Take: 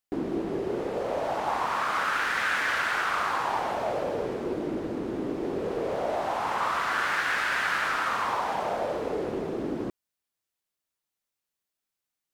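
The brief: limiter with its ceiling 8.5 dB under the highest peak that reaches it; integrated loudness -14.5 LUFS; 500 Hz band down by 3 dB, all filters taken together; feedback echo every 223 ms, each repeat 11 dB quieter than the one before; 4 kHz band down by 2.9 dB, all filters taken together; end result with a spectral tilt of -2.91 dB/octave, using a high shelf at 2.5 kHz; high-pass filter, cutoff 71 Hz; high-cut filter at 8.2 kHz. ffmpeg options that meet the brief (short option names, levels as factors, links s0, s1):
-af "highpass=71,lowpass=8200,equalizer=f=500:t=o:g=-4,highshelf=f=2500:g=3,equalizer=f=4000:t=o:g=-6.5,alimiter=limit=0.075:level=0:latency=1,aecho=1:1:223|446|669:0.282|0.0789|0.0221,volume=7.08"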